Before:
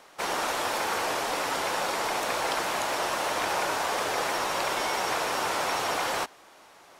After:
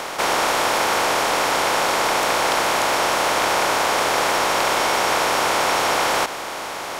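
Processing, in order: spectral levelling over time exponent 0.4; trim +4.5 dB

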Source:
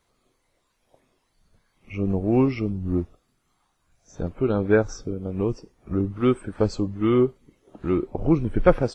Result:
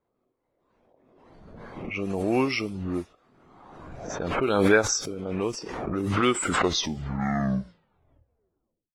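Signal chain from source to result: tape stop on the ending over 2.71 s; tilt EQ +4.5 dB/octave; level-controlled noise filter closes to 430 Hz, open at -28 dBFS; swell ahead of each attack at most 34 dB/s; trim +2.5 dB

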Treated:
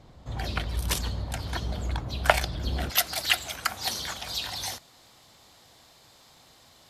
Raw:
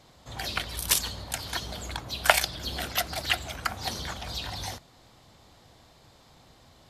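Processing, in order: tilt EQ -2.5 dB/octave, from 2.89 s +2 dB/octave

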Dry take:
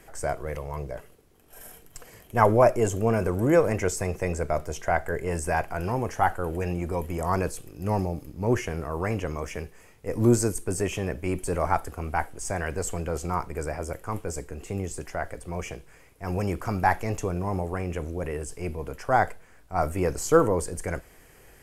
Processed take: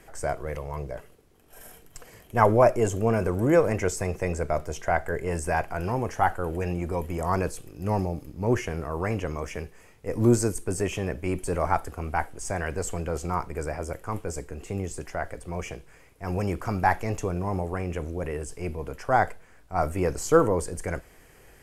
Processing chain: treble shelf 10 kHz -4.5 dB

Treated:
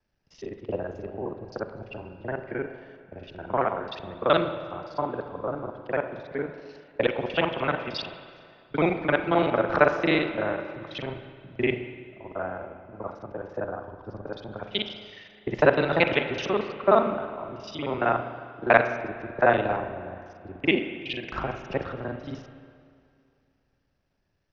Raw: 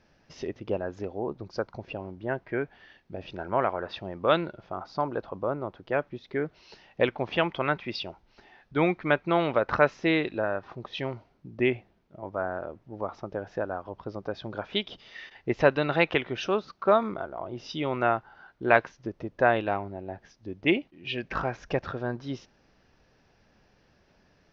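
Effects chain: time reversed locally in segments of 38 ms; spring tank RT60 3.3 s, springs 33/38/58 ms, chirp 35 ms, DRR 6.5 dB; three bands expanded up and down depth 40%

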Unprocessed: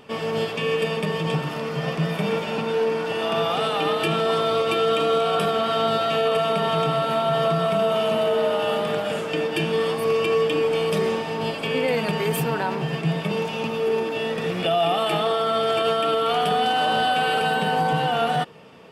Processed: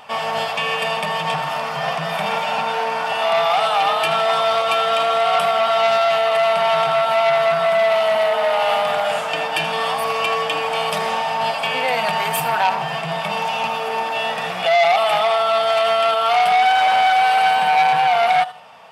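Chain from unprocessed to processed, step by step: resonant low shelf 530 Hz -11.5 dB, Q 3; in parallel at -2 dB: gain riding within 3 dB 0.5 s; 16.60–17.73 s: on the sum: hard clipper -7 dBFS, distortion -35 dB; thinning echo 80 ms, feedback 36%, high-pass 950 Hz, level -15 dB; transformer saturation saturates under 1.7 kHz

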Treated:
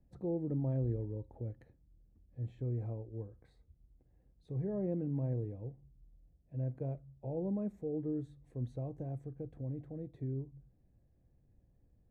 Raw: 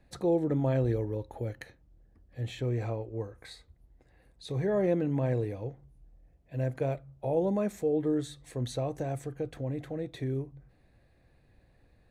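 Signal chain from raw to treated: FFT filter 200 Hz 0 dB, 900 Hz -12 dB, 1.4 kHz -18 dB, 4.3 kHz -26 dB; trim -4.5 dB

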